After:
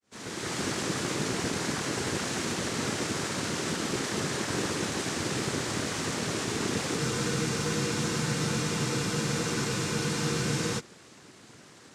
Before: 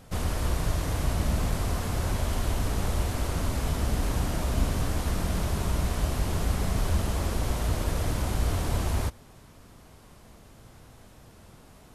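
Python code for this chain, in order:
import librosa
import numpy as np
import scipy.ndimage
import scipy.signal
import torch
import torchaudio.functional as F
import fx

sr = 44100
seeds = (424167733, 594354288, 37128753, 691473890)

y = fx.fade_in_head(x, sr, length_s=0.59)
y = fx.high_shelf(y, sr, hz=2300.0, db=9.0)
y = fx.noise_vocoder(y, sr, seeds[0], bands=3)
y = fx.spec_freeze(y, sr, seeds[1], at_s=7.01, hold_s=3.77)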